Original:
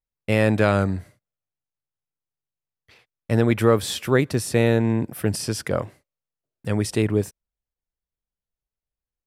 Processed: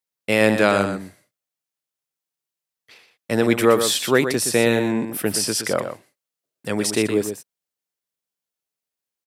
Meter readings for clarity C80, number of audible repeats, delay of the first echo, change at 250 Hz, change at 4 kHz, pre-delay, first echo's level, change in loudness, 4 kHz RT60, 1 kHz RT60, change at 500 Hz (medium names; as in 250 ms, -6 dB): no reverb, 1, 120 ms, +1.0 dB, +7.5 dB, no reverb, -8.5 dB, +2.0 dB, no reverb, no reverb, +2.5 dB